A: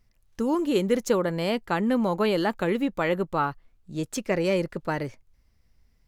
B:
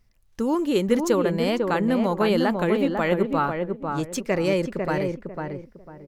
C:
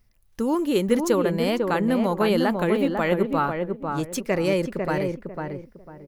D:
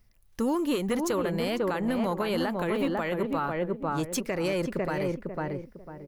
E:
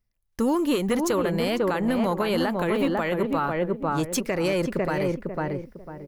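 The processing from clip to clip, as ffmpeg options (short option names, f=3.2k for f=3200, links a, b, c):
-filter_complex "[0:a]asplit=2[a][b];[b]adelay=498,lowpass=f=1.2k:p=1,volume=-3.5dB,asplit=2[c][d];[d]adelay=498,lowpass=f=1.2k:p=1,volume=0.28,asplit=2[e][f];[f]adelay=498,lowpass=f=1.2k:p=1,volume=0.28,asplit=2[g][h];[h]adelay=498,lowpass=f=1.2k:p=1,volume=0.28[i];[a][c][e][g][i]amix=inputs=5:normalize=0,volume=1.5dB"
-af "aexciter=amount=1.2:drive=8.1:freq=9.8k"
-filter_complex "[0:a]acrossover=split=730[a][b];[a]asoftclip=type=tanh:threshold=-21dB[c];[c][b]amix=inputs=2:normalize=0,alimiter=limit=-19.5dB:level=0:latency=1:release=179"
-af "agate=range=-18dB:threshold=-49dB:ratio=16:detection=peak,volume=4dB"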